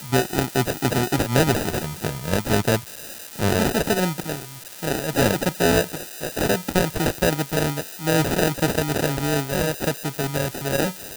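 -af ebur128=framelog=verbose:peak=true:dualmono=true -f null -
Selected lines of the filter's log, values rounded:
Integrated loudness:
  I:         -19.7 LUFS
  Threshold: -29.8 LUFS
Loudness range:
  LRA:         1.4 LU
  Threshold: -39.8 LUFS
  LRA low:   -20.6 LUFS
  LRA high:  -19.2 LUFS
True peak:
  Peak:       -1.7 dBFS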